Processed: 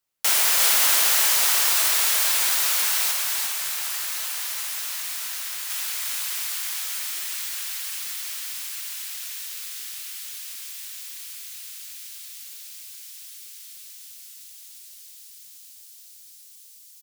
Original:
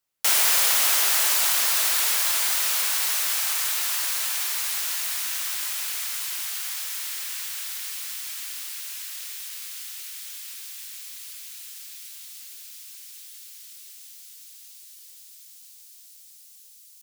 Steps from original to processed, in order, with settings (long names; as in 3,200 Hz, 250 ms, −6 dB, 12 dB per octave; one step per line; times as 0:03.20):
0:03.11–0:05.70: flanger 1.2 Hz, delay 8.5 ms, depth 6.3 ms, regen −70%
single-tap delay 354 ms −3.5 dB